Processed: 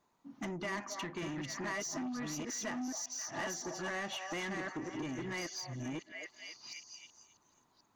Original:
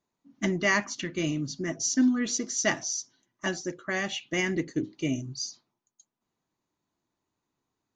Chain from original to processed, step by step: chunks repeated in reverse 612 ms, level -1 dB; peak limiter -17.5 dBFS, peak gain reduction 7 dB; repeats whose band climbs or falls 269 ms, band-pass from 830 Hz, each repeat 0.7 oct, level -9 dB; compression 3:1, threshold -45 dBFS, peak gain reduction 17 dB; saturation -40 dBFS, distortion -13 dB; peaking EQ 1 kHz +7.5 dB 1.4 oct; trim +4.5 dB

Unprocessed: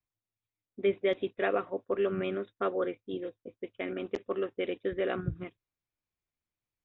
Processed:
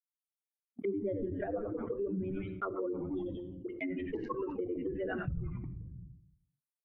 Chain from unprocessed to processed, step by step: expander on every frequency bin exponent 3; frequency-shifting echo 88 ms, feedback 61%, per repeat -96 Hz, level -15 dB; gate -56 dBFS, range -31 dB; in parallel at -2.5 dB: peak limiter -30.5 dBFS, peak gain reduction 11.5 dB; 2.70–3.73 s: on the sum: phase dispersion highs, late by 60 ms, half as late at 620 Hz; on a send at -14 dB: high-pass 43 Hz + reverberation RT60 0.55 s, pre-delay 4 ms; on the sum: rotary cabinet horn 7 Hz, later 0.85 Hz, at 2.77 s; low-pass that closes with the level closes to 390 Hz, closed at -34 dBFS; dynamic bell 1.5 kHz, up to +5 dB, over -57 dBFS, Q 1.2; level flattener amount 70%; trim -4.5 dB

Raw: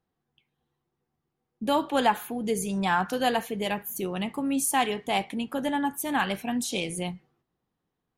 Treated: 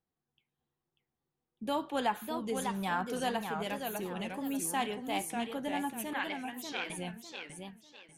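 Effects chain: 6.13–6.90 s: cabinet simulation 450–5800 Hz, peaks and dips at 660 Hz -9 dB, 1.2 kHz -4 dB, 2.1 kHz +7 dB; modulated delay 597 ms, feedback 31%, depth 180 cents, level -5.5 dB; trim -8.5 dB

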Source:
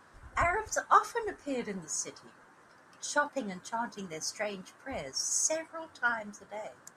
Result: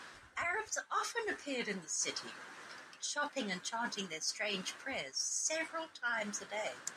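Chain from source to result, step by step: frequency weighting D; reverse; compression 6:1, threshold -40 dBFS, peak gain reduction 22 dB; reverse; trim +4.5 dB

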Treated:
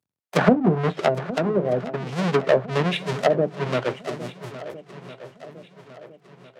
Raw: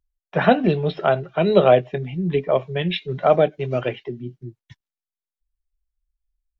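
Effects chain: square wave that keeps the level; Bessel high-pass 160 Hz, order 8; low-pass that closes with the level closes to 450 Hz, closed at -9.5 dBFS; random-step tremolo 2.9 Hz, depth 55%; on a send: shuffle delay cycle 1355 ms, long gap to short 1.5:1, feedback 40%, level -15 dB

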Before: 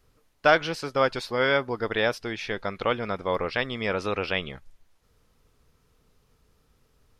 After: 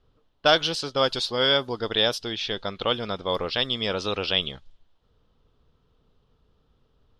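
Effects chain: resonant high shelf 2.7 kHz +6.5 dB, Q 3; level-controlled noise filter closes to 1.8 kHz, open at -19.5 dBFS

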